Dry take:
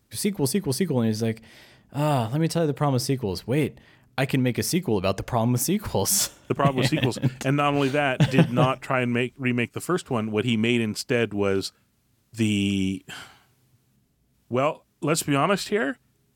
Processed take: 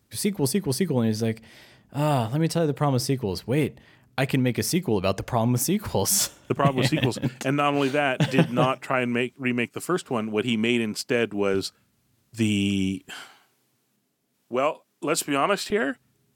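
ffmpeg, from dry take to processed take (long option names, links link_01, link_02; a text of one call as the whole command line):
ffmpeg -i in.wav -af "asetnsamples=nb_out_samples=441:pad=0,asendcmd='7.24 highpass f 160;11.54 highpass f 70;13.09 highpass f 270;15.7 highpass f 89',highpass=51" out.wav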